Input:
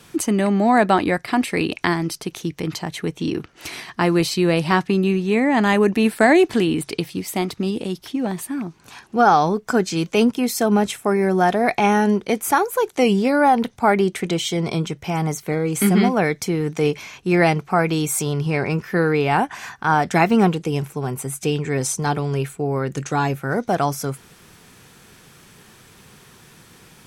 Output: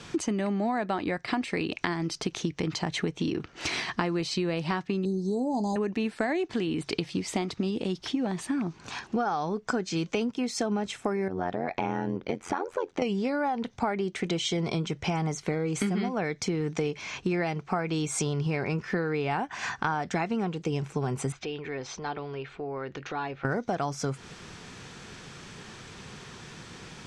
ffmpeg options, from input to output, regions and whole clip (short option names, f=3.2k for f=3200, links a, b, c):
-filter_complex "[0:a]asettb=1/sr,asplit=3[a][b][c];[a]atrim=end=5.054[d];[b]atrim=start=5.05:end=5.76,asetpts=PTS-STARTPTS,afade=t=in:d=0.004:c=qsin,afade=t=out:st=0.706:d=0.004:c=qsin,asuperstop=centerf=2000:order=12:qfactor=0.59,equalizer=f=11k:w=0.35:g=7.5,asplit=2[e][f];[f]adelay=16,volume=-13dB[g];[e][g]amix=inputs=2:normalize=0,atrim=end_sample=31311[h];[c]atrim=start=5.756[i];[d][h]acrossfade=d=0.004:c1=hsin:c2=qsin[j];[j][i]acrossfade=d=0.004:c1=qsin:c2=hsin,asettb=1/sr,asplit=3[k][l][m];[k]atrim=end=11.284[n];[l]atrim=start=11.28:end=13.02,asetpts=PTS-STARTPTS,afade=t=in:d=0.004:c=qsin,afade=t=out:st=1.736:d=0.004:c=qsin,aemphasis=mode=reproduction:type=75fm,acompressor=threshold=-27dB:ratio=1.5:attack=3.2:release=140:knee=1:detection=peak,tremolo=f=88:d=0.919[o];[m]atrim=start=13.016[p];[n][o]acrossfade=d=0.004:c1=hsin:c2=qsin[q];[q][p]acrossfade=d=0.004:c1=qsin:c2=hsin,asettb=1/sr,asplit=3[r][s][t];[r]atrim=end=21.324[u];[s]atrim=start=21.32:end=23.45,asetpts=PTS-STARTPTS,afade=t=in:d=0.004:c=qsin,afade=t=out:st=2.126:d=0.004:c=qsin,lowpass=f=4.2k:w=0.5412,lowpass=f=4.2k:w=1.3066,acompressor=threshold=-38dB:ratio=2.5:attack=3.2:release=140:knee=1:detection=peak,equalizer=f=160:w=1.1:g=-11.5[v];[t]atrim=start=23.446[w];[u][v]acrossfade=d=0.004:c1=hsin:c2=qsin[x];[x][w]acrossfade=d=0.004:c1=qsin:c2=hsin,lowpass=f=7.1k:w=0.5412,lowpass=f=7.1k:w=1.3066,acompressor=threshold=-29dB:ratio=12,volume=3.5dB"